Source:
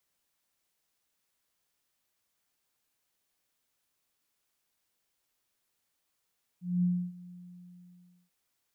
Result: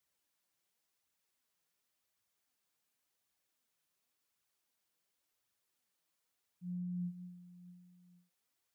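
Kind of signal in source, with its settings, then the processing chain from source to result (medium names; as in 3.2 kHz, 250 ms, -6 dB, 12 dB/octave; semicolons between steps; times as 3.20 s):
ADSR sine 178 Hz, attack 219 ms, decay 291 ms, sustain -21.5 dB, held 0.69 s, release 1000 ms -23 dBFS
high-pass 53 Hz; compression, threshold -32 dBFS; flange 0.91 Hz, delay 0.5 ms, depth 6 ms, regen +47%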